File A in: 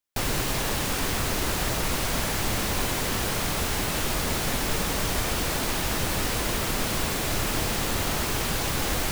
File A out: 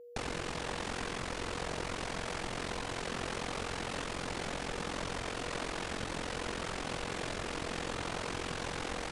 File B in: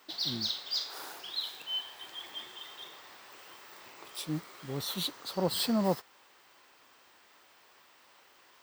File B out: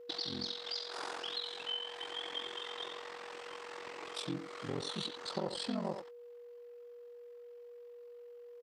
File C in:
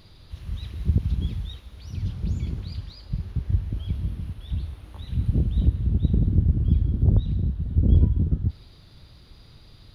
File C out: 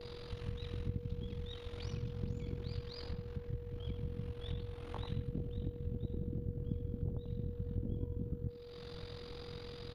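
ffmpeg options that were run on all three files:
-filter_complex "[0:a]acompressor=threshold=-39dB:ratio=5,aeval=exprs='val(0)*sin(2*PI*22*n/s)':c=same,aemphasis=mode=reproduction:type=cd,asplit=2[a][b];[b]adelay=90,highpass=300,lowpass=3.4k,asoftclip=type=hard:threshold=-37dB,volume=-6dB[c];[a][c]amix=inputs=2:normalize=0,agate=range=-20dB:threshold=-58dB:ratio=16:detection=peak,aeval=exprs='val(0)+0.00158*sin(2*PI*480*n/s)':c=same,aresample=22050,aresample=44100,lowshelf=f=140:g=-7.5,volume=7.5dB" -ar 48000 -c:a mp2 -b:a 192k

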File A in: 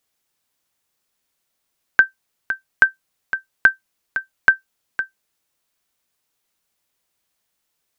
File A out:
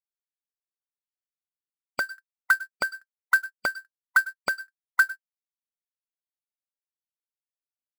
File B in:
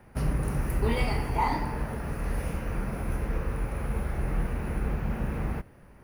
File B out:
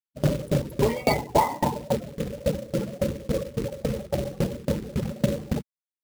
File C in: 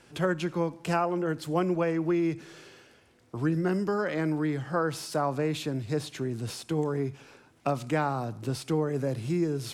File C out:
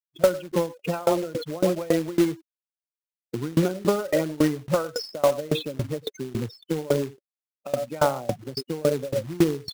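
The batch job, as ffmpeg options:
-filter_complex "[0:a]highpass=130,asplit=2[a][b];[b]adelay=100,highpass=300,lowpass=3.4k,asoftclip=type=hard:threshold=-9.5dB,volume=-10dB[c];[a][c]amix=inputs=2:normalize=0,acontrast=57,highshelf=f=4.1k:g=6.5,afftfilt=real='re*gte(hypot(re,im),0.0891)':imag='im*gte(hypot(re,im),0.0891)':win_size=1024:overlap=0.75,asuperstop=centerf=1700:order=20:qfactor=6.5,equalizer=f=570:t=o:w=0.22:g=15,afftdn=nr=26:nf=-34,acrusher=bits=3:mode=log:mix=0:aa=0.000001,acompressor=threshold=-19dB:ratio=16,alimiter=level_in=10.5dB:limit=-1dB:release=50:level=0:latency=1,aeval=exprs='val(0)*pow(10,-25*if(lt(mod(3.6*n/s,1),2*abs(3.6)/1000),1-mod(3.6*n/s,1)/(2*abs(3.6)/1000),(mod(3.6*n/s,1)-2*abs(3.6)/1000)/(1-2*abs(3.6)/1000))/20)':c=same,volume=-2.5dB"

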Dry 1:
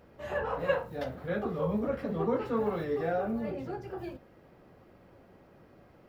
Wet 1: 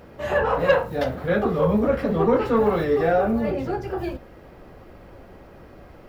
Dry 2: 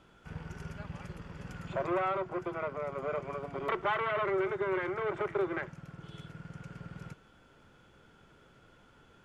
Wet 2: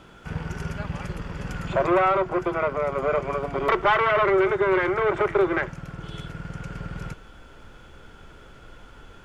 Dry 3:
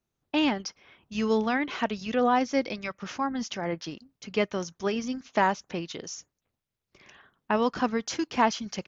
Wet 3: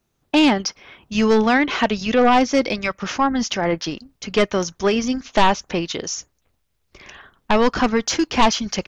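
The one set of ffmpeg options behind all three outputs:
-af "aeval=exprs='0.335*sin(PI/2*2.51*val(0)/0.335)':c=same,asubboost=boost=4:cutoff=65"

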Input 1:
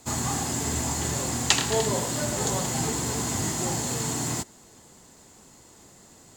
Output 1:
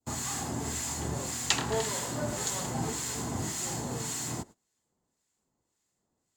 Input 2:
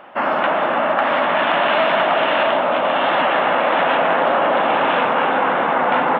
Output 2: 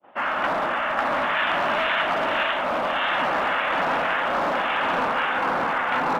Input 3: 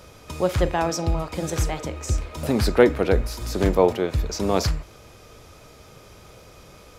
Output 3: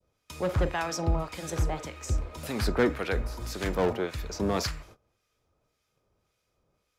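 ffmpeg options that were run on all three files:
-filter_complex "[0:a]agate=range=-22dB:threshold=-41dB:ratio=16:detection=peak,adynamicequalizer=threshold=0.0251:dfrequency=1400:dqfactor=0.74:tfrequency=1400:tqfactor=0.74:attack=5:release=100:ratio=0.375:range=2:mode=boostabove:tftype=bell,acrossover=split=1300[a][b];[a]aeval=exprs='val(0)*(1-0.7/2+0.7/2*cos(2*PI*1.8*n/s))':c=same[c];[b]aeval=exprs='val(0)*(1-0.7/2-0.7/2*cos(2*PI*1.8*n/s))':c=same[d];[c][d]amix=inputs=2:normalize=0,acrossover=split=310|1100|3100[e][f][g][h];[f]asoftclip=type=hard:threshold=-24.5dB[i];[e][i][g][h]amix=inputs=4:normalize=0,volume=-3dB"

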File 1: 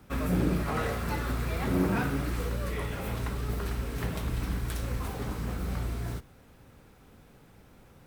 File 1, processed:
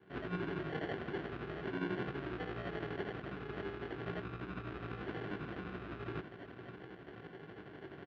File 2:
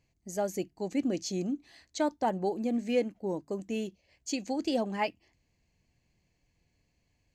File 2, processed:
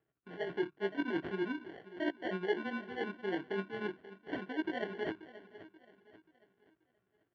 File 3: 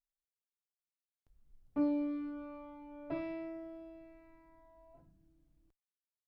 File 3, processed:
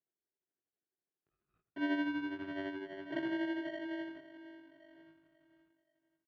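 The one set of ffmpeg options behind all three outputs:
-filter_complex "[0:a]agate=range=-12dB:threshold=-57dB:ratio=16:detection=peak,equalizer=f=260:t=o:w=0.21:g=-6,areverse,acompressor=threshold=-42dB:ratio=10,areverse,tremolo=f=12:d=0.6,flanger=delay=16:depth=4.9:speed=0.44,asplit=2[a][b];[b]aecho=0:1:533|1066|1599|2132:0.158|0.0634|0.0254|0.0101[c];[a][c]amix=inputs=2:normalize=0,acrusher=samples=35:mix=1:aa=0.000001,highpass=190,equalizer=f=220:t=q:w=4:g=-6,equalizer=f=370:t=q:w=4:g=6,equalizer=f=530:t=q:w=4:g=-7,equalizer=f=890:t=q:w=4:g=-7,equalizer=f=1.5k:t=q:w=4:g=5,equalizer=f=2.2k:t=q:w=4:g=-3,lowpass=f=3k:w=0.5412,lowpass=f=3k:w=1.3066,volume=15dB"

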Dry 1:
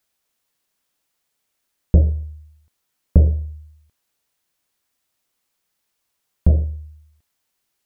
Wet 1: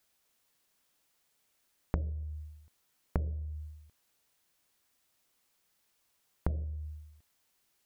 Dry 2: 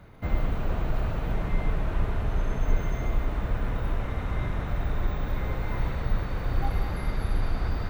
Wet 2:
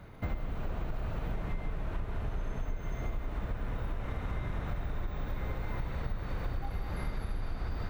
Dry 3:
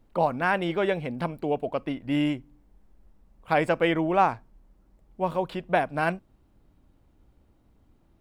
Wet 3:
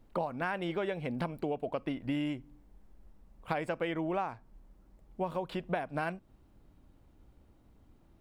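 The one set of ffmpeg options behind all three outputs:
-af "acompressor=threshold=-30dB:ratio=10"

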